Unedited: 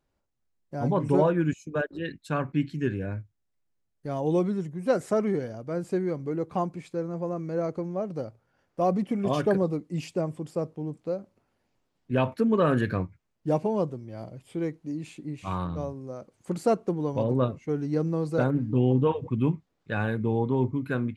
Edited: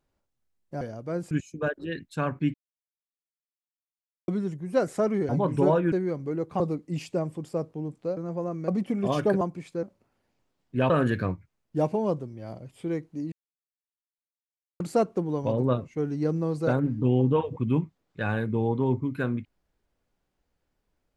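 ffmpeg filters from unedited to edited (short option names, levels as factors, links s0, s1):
-filter_complex "[0:a]asplit=15[s0][s1][s2][s3][s4][s5][s6][s7][s8][s9][s10][s11][s12][s13][s14];[s0]atrim=end=0.812[s15];[s1]atrim=start=5.418:end=5.922[s16];[s2]atrim=start=1.438:end=2.67,asetpts=PTS-STARTPTS,afade=t=out:st=1.228:d=0.004:c=hsin[s17];[s3]atrim=start=2.67:end=4.41,asetpts=PTS-STARTPTS,volume=0[s18];[s4]atrim=start=4.41:end=5.422,asetpts=PTS-STARTPTS,afade=t=in:d=0.004:c=hsin[s19];[s5]atrim=start=0.808:end=1.442[s20];[s6]atrim=start=5.918:end=6.602[s21];[s7]atrim=start=9.618:end=11.192[s22];[s8]atrim=start=7.018:end=7.532[s23];[s9]atrim=start=8.888:end=9.622[s24];[s10]atrim=start=6.598:end=7.022[s25];[s11]atrim=start=11.188:end=12.262[s26];[s12]atrim=start=12.608:end=15.03,asetpts=PTS-STARTPTS,afade=t=out:st=2.418:d=0.004:c=hsin[s27];[s13]atrim=start=15.03:end=16.51,asetpts=PTS-STARTPTS,volume=0[s28];[s14]atrim=start=16.51,asetpts=PTS-STARTPTS,afade=t=in:d=0.004:c=hsin[s29];[s15][s16]acrossfade=d=0.004:c1=hsin:c2=hsin[s30];[s17][s18][s19]concat=n=3:v=0:a=1[s31];[s30][s31]acrossfade=d=0.004:c1=hsin:c2=hsin[s32];[s32][s20]acrossfade=d=0.004:c1=hsin:c2=hsin[s33];[s33][s21]acrossfade=d=0.004:c1=hsin:c2=hsin[s34];[s34][s22]acrossfade=d=0.004:c1=hsin:c2=hsin[s35];[s35][s23]acrossfade=d=0.004:c1=hsin:c2=hsin[s36];[s36][s24]acrossfade=d=0.004:c1=hsin:c2=hsin[s37];[s37][s25]acrossfade=d=0.004:c1=hsin:c2=hsin[s38];[s38][s26]acrossfade=d=0.004:c1=hsin:c2=hsin[s39];[s27][s28][s29]concat=n=3:v=0:a=1[s40];[s39][s40]acrossfade=d=0.004:c1=hsin:c2=hsin"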